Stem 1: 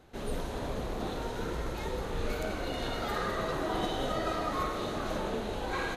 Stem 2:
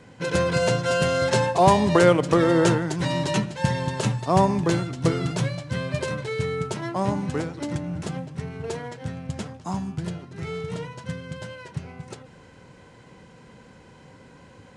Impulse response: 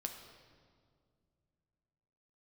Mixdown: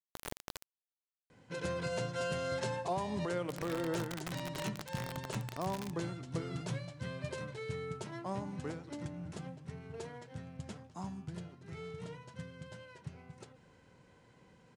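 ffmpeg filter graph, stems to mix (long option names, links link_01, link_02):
-filter_complex "[0:a]acompressor=threshold=-34dB:ratio=12,acrusher=bits=4:mix=0:aa=0.000001,volume=-1.5dB,asplit=3[link_01][link_02][link_03];[link_01]atrim=end=0.64,asetpts=PTS-STARTPTS,afade=type=out:start_time=0.636:duration=0.004:curve=hsin[link_04];[link_02]atrim=start=0.64:end=3.45,asetpts=PTS-STARTPTS,volume=0[link_05];[link_03]atrim=start=3.45,asetpts=PTS-STARTPTS,afade=type=in:duration=0.004:curve=hsin[link_06];[link_04][link_05][link_06]concat=n=3:v=0:a=1[link_07];[1:a]adelay=1300,volume=-13.5dB[link_08];[link_07][link_08]amix=inputs=2:normalize=0,alimiter=level_in=2dB:limit=-24dB:level=0:latency=1:release=199,volume=-2dB"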